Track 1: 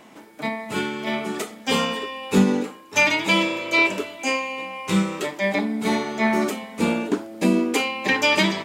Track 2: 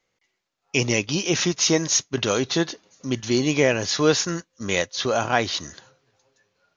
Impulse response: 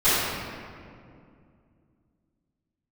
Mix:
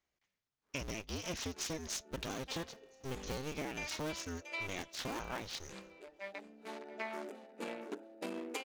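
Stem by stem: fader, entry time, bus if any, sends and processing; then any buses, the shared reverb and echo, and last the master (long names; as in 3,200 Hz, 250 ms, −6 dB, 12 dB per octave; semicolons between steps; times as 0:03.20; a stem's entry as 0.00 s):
0:06.60 −17.5 dB → 0:06.96 −8.5 dB, 0.80 s, no send, echo send −15 dB, adaptive Wiener filter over 41 samples; high-pass filter 560 Hz 12 dB per octave
−13.5 dB, 0.00 s, no send, no echo send, sub-harmonics by changed cycles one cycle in 2, inverted; low-shelf EQ 120 Hz +6.5 dB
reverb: not used
echo: repeating echo 682 ms, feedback 24%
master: downward compressor 6 to 1, threshold −37 dBFS, peak gain reduction 11.5 dB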